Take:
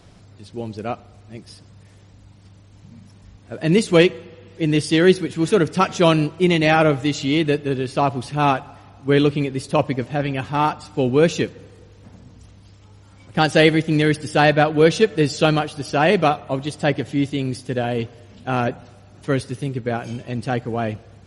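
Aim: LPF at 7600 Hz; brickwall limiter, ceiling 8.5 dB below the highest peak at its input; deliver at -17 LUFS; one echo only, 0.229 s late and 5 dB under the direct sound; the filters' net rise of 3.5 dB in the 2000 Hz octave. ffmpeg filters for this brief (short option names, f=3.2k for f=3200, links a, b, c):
-af "lowpass=7.6k,equalizer=f=2k:t=o:g=4.5,alimiter=limit=-9dB:level=0:latency=1,aecho=1:1:229:0.562,volume=4dB"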